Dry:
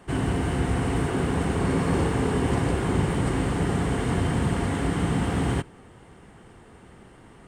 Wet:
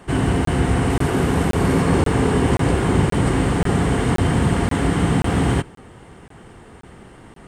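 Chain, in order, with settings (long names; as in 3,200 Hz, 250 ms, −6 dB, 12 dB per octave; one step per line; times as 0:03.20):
0:00.90–0:01.82: variable-slope delta modulation 64 kbit/s
regular buffer underruns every 0.53 s, samples 1,024, zero, from 0:00.45
level +6.5 dB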